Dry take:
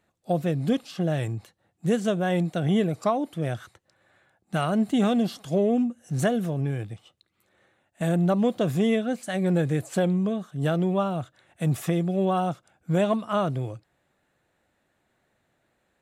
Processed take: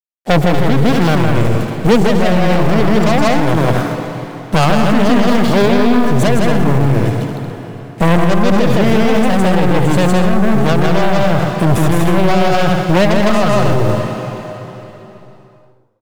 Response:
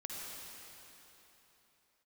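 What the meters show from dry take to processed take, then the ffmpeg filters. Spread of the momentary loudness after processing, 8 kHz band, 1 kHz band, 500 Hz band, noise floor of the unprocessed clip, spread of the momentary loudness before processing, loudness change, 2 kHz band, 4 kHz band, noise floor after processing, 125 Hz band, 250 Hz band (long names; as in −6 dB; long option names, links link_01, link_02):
9 LU, +13.5 dB, +15.5 dB, +13.0 dB, −73 dBFS, 9 LU, +12.5 dB, +17.5 dB, +16.5 dB, −43 dBFS, +13.5 dB, +12.0 dB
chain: -filter_complex "[0:a]highshelf=frequency=3900:gain=-6,acrossover=split=120|1300[link_01][link_02][link_03];[link_02]acontrast=54[link_04];[link_01][link_04][link_03]amix=inputs=3:normalize=0,aeval=exprs='0.473*(cos(1*acos(clip(val(0)/0.473,-1,1)))-cos(1*PI/2))+0.0841*(cos(8*acos(clip(val(0)/0.473,-1,1)))-cos(8*PI/2))':channel_layout=same,asoftclip=type=tanh:threshold=-20.5dB,acrusher=bits=7:mix=0:aa=0.5,aecho=1:1:160.3|233.2|288.6:1|0.501|0.282,asplit=2[link_05][link_06];[1:a]atrim=start_sample=2205,adelay=115[link_07];[link_06][link_07]afir=irnorm=-1:irlink=0,volume=-10dB[link_08];[link_05][link_08]amix=inputs=2:normalize=0,alimiter=level_in=20dB:limit=-1dB:release=50:level=0:latency=1,volume=-2.5dB"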